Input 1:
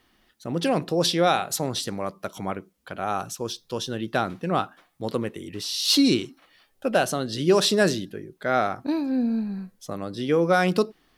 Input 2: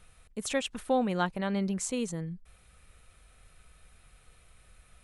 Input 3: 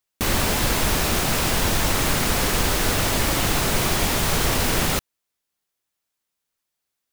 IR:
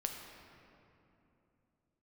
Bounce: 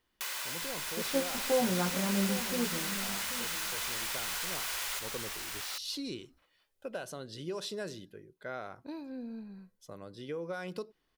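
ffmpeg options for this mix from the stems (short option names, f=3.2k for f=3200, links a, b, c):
-filter_complex "[0:a]volume=-14.5dB[a];[1:a]lowpass=1.1k,flanger=delay=15:depth=7:speed=0.41,adelay=600,volume=-1.5dB,asplit=3[b][c][d];[c]volume=-9dB[e];[d]volume=-11dB[f];[2:a]highpass=1.2k,volume=-8.5dB,asplit=2[g][h];[h]volume=-7dB[i];[a][g]amix=inputs=2:normalize=0,aecho=1:1:2:0.32,acompressor=threshold=-36dB:ratio=3,volume=0dB[j];[3:a]atrim=start_sample=2205[k];[e][k]afir=irnorm=-1:irlink=0[l];[f][i]amix=inputs=2:normalize=0,aecho=0:1:788:1[m];[b][j][l][m]amix=inputs=4:normalize=0"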